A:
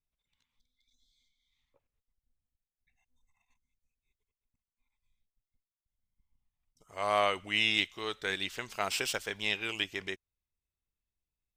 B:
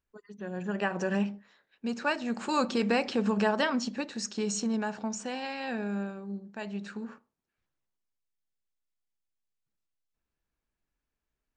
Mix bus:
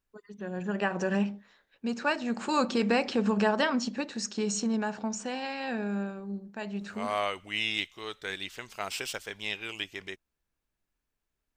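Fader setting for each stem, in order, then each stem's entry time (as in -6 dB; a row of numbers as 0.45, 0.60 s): -2.5, +1.0 dB; 0.00, 0.00 s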